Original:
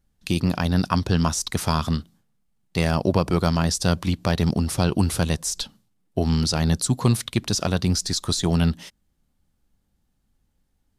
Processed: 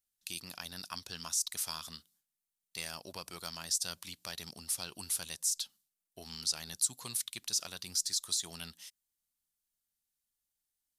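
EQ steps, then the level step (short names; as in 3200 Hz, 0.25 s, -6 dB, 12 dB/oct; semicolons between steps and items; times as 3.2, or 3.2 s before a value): pre-emphasis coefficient 0.97; -4.0 dB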